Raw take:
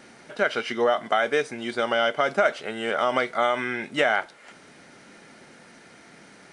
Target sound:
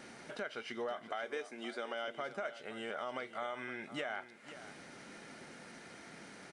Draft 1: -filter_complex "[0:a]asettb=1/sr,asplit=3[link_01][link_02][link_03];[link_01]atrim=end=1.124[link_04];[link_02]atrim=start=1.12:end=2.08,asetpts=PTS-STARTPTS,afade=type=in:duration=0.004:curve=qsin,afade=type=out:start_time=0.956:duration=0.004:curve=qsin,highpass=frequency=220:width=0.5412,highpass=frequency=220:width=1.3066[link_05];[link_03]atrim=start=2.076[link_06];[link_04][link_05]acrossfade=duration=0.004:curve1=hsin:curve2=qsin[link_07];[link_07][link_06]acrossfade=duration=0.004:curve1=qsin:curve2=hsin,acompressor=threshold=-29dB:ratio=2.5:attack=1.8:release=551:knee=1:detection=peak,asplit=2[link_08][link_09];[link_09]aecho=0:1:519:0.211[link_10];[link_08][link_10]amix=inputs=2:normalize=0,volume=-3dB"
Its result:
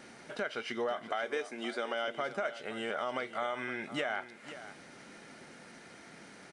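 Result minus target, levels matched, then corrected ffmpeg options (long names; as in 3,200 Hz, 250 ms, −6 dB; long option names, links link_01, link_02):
downward compressor: peak gain reduction −5.5 dB
-filter_complex "[0:a]asettb=1/sr,asplit=3[link_01][link_02][link_03];[link_01]atrim=end=1.124[link_04];[link_02]atrim=start=1.12:end=2.08,asetpts=PTS-STARTPTS,afade=type=in:duration=0.004:curve=qsin,afade=type=out:start_time=0.956:duration=0.004:curve=qsin,highpass=frequency=220:width=0.5412,highpass=frequency=220:width=1.3066[link_05];[link_03]atrim=start=2.076[link_06];[link_04][link_05]acrossfade=duration=0.004:curve1=hsin:curve2=qsin[link_07];[link_07][link_06]acrossfade=duration=0.004:curve1=qsin:curve2=hsin,acompressor=threshold=-38dB:ratio=2.5:attack=1.8:release=551:knee=1:detection=peak,asplit=2[link_08][link_09];[link_09]aecho=0:1:519:0.211[link_10];[link_08][link_10]amix=inputs=2:normalize=0,volume=-3dB"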